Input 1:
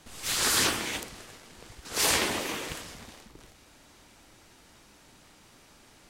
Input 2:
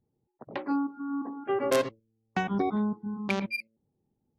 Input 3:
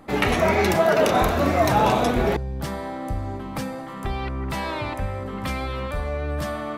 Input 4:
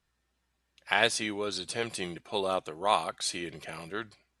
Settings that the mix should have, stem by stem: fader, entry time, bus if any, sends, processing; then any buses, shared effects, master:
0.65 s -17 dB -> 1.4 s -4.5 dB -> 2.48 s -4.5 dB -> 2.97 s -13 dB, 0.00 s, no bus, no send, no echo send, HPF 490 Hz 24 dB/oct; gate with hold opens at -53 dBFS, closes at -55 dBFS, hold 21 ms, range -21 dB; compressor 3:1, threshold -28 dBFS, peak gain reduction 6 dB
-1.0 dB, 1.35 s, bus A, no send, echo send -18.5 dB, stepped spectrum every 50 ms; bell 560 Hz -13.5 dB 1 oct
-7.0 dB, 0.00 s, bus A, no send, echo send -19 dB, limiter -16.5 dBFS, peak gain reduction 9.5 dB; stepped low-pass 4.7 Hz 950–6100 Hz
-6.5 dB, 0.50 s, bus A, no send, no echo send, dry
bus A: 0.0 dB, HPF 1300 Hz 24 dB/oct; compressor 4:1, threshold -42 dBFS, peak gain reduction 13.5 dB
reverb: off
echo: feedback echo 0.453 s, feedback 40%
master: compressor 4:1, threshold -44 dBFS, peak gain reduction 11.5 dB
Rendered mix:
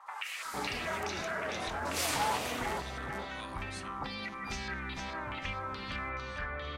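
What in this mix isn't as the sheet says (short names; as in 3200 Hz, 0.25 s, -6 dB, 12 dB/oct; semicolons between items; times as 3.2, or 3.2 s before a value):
stem 2: entry 1.35 s -> 0.95 s; stem 3 -7.0 dB -> +3.5 dB; master: missing compressor 4:1, threshold -44 dBFS, peak gain reduction 11.5 dB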